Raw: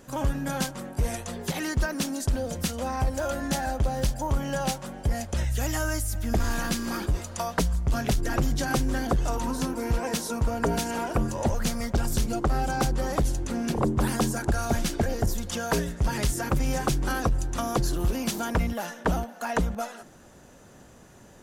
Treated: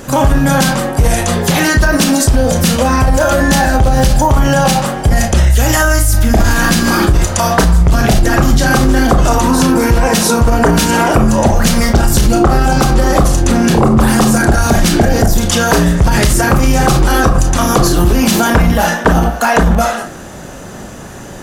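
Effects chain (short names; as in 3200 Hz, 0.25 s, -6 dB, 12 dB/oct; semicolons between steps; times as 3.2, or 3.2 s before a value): reverb RT60 0.45 s, pre-delay 24 ms, DRR 2.5 dB; maximiser +21.5 dB; gain -1 dB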